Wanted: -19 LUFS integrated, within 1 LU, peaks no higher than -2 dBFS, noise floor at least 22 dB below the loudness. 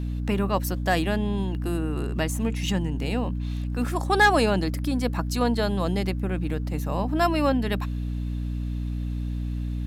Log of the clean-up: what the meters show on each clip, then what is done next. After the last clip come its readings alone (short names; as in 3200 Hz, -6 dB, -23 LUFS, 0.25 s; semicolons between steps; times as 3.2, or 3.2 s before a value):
hum 60 Hz; harmonics up to 300 Hz; hum level -26 dBFS; loudness -26.0 LUFS; peak -9.0 dBFS; loudness target -19.0 LUFS
-> de-hum 60 Hz, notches 5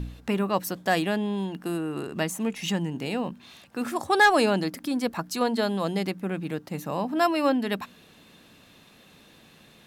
hum none; loudness -26.5 LUFS; peak -10.5 dBFS; loudness target -19.0 LUFS
-> gain +7.5 dB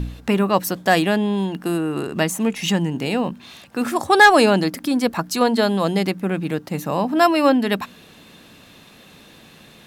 loudness -19.0 LUFS; peak -3.0 dBFS; noise floor -47 dBFS